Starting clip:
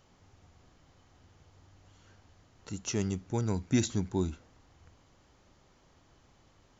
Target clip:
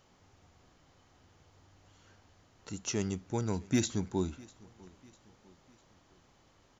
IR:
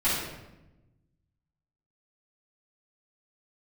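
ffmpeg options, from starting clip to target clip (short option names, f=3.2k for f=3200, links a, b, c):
-af "lowshelf=f=150:g=-5.5,asoftclip=type=hard:threshold=-19dB,aecho=1:1:650|1300|1950:0.0668|0.0321|0.0154"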